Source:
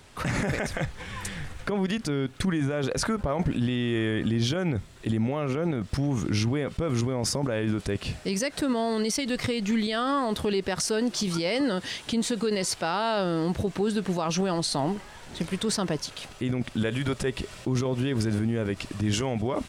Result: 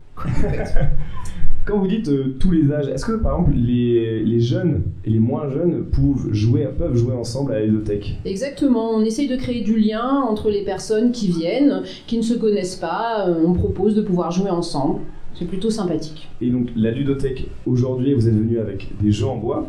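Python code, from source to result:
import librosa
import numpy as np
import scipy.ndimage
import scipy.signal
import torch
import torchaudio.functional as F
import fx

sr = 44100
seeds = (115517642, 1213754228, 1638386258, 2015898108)

p1 = fx.vibrato(x, sr, rate_hz=0.78, depth_cents=38.0)
p2 = fx.tilt_eq(p1, sr, slope=-3.0)
p3 = fx.rider(p2, sr, range_db=3, speed_s=2.0)
p4 = p2 + (p3 * 10.0 ** (-2.0 / 20.0))
p5 = fx.noise_reduce_blind(p4, sr, reduce_db=9)
p6 = fx.room_shoebox(p5, sr, seeds[0], volume_m3=31.0, walls='mixed', distance_m=0.37)
y = p6 * 10.0 ** (-2.5 / 20.0)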